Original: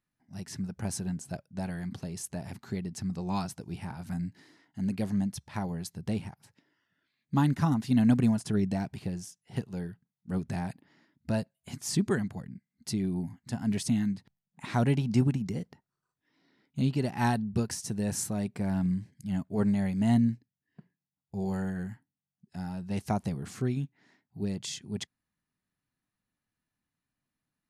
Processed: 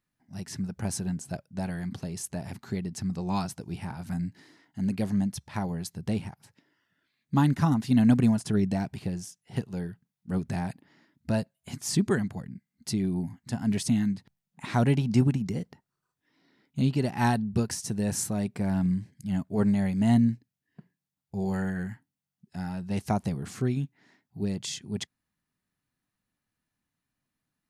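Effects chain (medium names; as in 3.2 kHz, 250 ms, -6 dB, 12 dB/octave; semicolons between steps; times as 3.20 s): 21.53–22.80 s: dynamic bell 1.9 kHz, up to +5 dB, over -57 dBFS, Q 1.5; trim +2.5 dB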